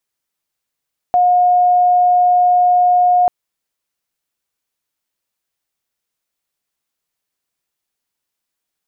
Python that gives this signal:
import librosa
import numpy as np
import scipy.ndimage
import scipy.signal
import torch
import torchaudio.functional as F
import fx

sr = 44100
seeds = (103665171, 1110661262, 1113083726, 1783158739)

y = 10.0 ** (-8.5 / 20.0) * np.sin(2.0 * np.pi * (718.0 * (np.arange(round(2.14 * sr)) / sr)))